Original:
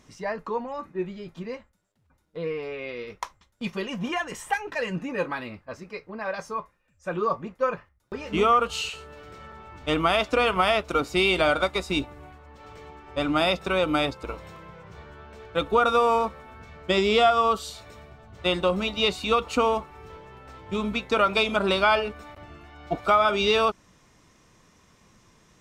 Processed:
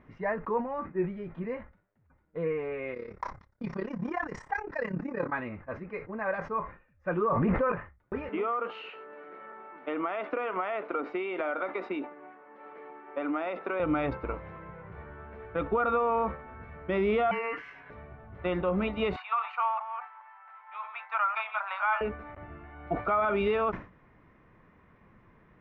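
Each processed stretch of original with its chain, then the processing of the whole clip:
2.94–5.33 resonant high shelf 4000 Hz +10.5 dB, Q 3 + AM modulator 34 Hz, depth 70% + notch 6300 Hz, Q 27
7.32–7.72 careless resampling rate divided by 4×, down filtered, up hold + fast leveller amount 100%
8.29–13.8 HPF 270 Hz 24 dB/oct + compressor, threshold -26 dBFS + air absorption 81 m
17.31–17.9 compressor 4:1, threshold -24 dBFS + ring modulator 1600 Hz
19.16–22.01 reverse delay 0.211 s, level -9.5 dB + steep high-pass 780 Hz 48 dB/oct + high shelf 3100 Hz -10.5 dB
whole clip: Chebyshev low-pass 2000 Hz, order 3; limiter -19 dBFS; sustainer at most 140 dB/s

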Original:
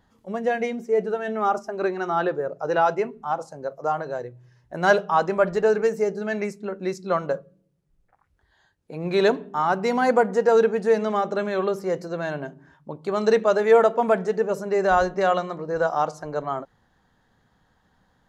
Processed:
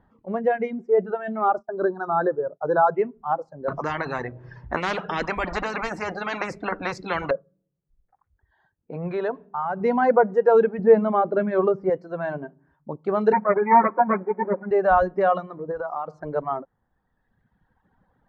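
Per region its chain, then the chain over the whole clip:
1.53–2.95 expander -34 dBFS + brick-wall FIR band-stop 1800–3600 Hz
3.68–7.31 notch 3000 Hz, Q 25 + spectral compressor 10:1
8.96–9.81 bell 300 Hz -13.5 dB 0.42 oct + compressor 2:1, threshold -27 dBFS
10.79–11.9 LPF 3900 Hz + low shelf 480 Hz +6 dB
13.32–14.71 minimum comb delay 9.6 ms + brick-wall FIR band-pass 170–2500 Hz + comb 5.5 ms, depth 58%
15.71–16.29 compressor, threshold -26 dBFS + bell 1200 Hz +4 dB 0.3 oct
whole clip: reverb removal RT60 1.6 s; LPF 1500 Hz 12 dB/oct; gain +2.5 dB

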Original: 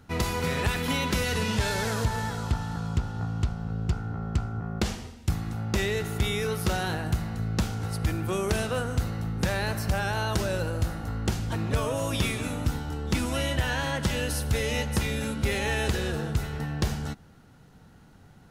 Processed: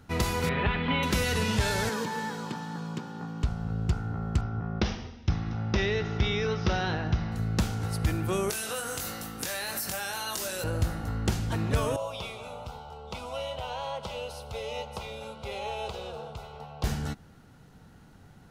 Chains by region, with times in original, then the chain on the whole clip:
0.49–1.03 steep low-pass 3400 Hz + comb 5 ms, depth 33%
1.89–3.44 steep high-pass 160 Hz + bell 10000 Hz -5 dB 1 oct + notch comb 680 Hz
4.41–7.32 steep low-pass 5900 Hz 72 dB/oct + notch 4400 Hz, Q 11
8.5–10.64 RIAA curve recording + compressor, threshold -30 dBFS + doubler 22 ms -4.5 dB
11.96–16.84 three-band isolator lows -15 dB, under 300 Hz, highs -18 dB, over 3900 Hz + fixed phaser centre 730 Hz, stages 4
whole clip: dry

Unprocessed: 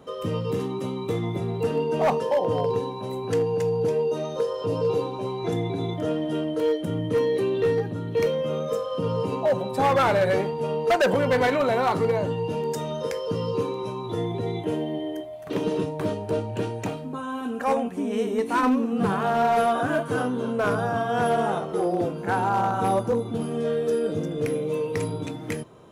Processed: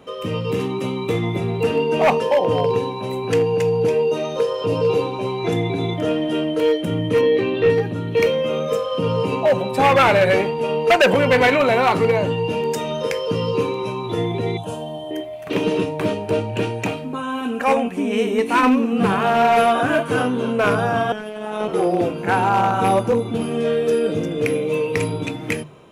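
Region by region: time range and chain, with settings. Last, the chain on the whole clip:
7.21–7.7 air absorption 130 m + doubler 19 ms -4 dB
14.57–15.11 bell 8200 Hz +8.5 dB + fixed phaser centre 870 Hz, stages 4
21.12–21.68 negative-ratio compressor -31 dBFS + robotiser 213 Hz
whole clip: AGC gain up to 3 dB; bell 2500 Hz +9 dB 0.63 oct; notches 50/100/150 Hz; gain +2.5 dB

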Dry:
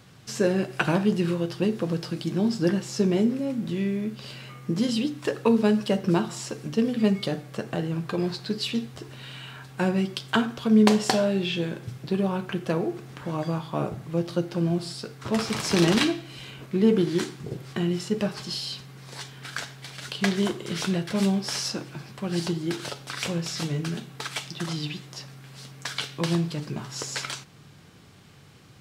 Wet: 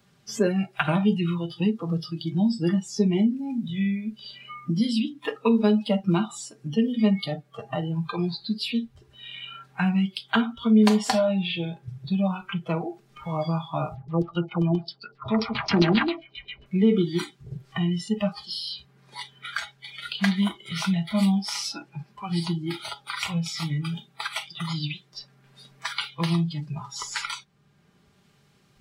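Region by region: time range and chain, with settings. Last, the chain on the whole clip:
13.95–16.66 LFO low-pass saw down 7.5 Hz 340–5100 Hz + thin delay 0.121 s, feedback 54%, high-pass 1500 Hz, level -22 dB
whole clip: spectral noise reduction 22 dB; comb 5 ms, depth 52%; three-band squash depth 40%

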